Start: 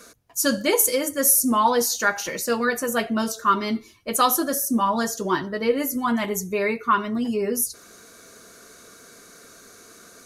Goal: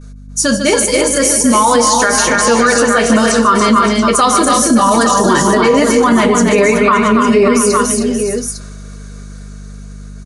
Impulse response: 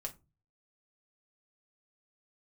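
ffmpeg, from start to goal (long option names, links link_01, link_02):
-filter_complex "[0:a]agate=range=-33dB:threshold=-38dB:ratio=3:detection=peak,dynaudnorm=framelen=470:gausssize=7:maxgain=11.5dB,aeval=exprs='val(0)+0.00708*(sin(2*PI*50*n/s)+sin(2*PI*2*50*n/s)/2+sin(2*PI*3*50*n/s)/3+sin(2*PI*4*50*n/s)/4+sin(2*PI*5*50*n/s)/5)':channel_layout=same,aecho=1:1:149|280|314|570|679|855:0.266|0.447|0.316|0.188|0.168|0.316,asplit=2[link_01][link_02];[1:a]atrim=start_sample=2205[link_03];[link_02][link_03]afir=irnorm=-1:irlink=0,volume=-6.5dB[link_04];[link_01][link_04]amix=inputs=2:normalize=0,aresample=22050,aresample=44100,alimiter=level_in=9.5dB:limit=-1dB:release=50:level=0:latency=1,volume=-1dB"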